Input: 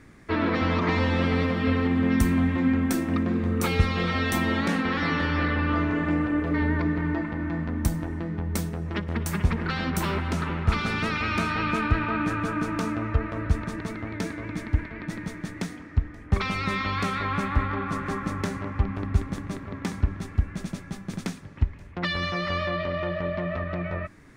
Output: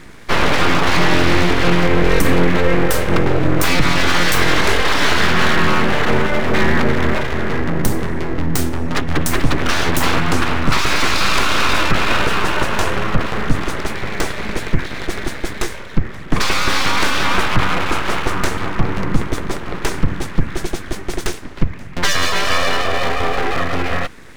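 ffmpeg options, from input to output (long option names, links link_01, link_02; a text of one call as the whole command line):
ffmpeg -i in.wav -af "equalizer=frequency=370:width_type=o:width=0.92:gain=-7,aeval=exprs='abs(val(0))':channel_layout=same,alimiter=level_in=16dB:limit=-1dB:release=50:level=0:latency=1,volume=-1dB" out.wav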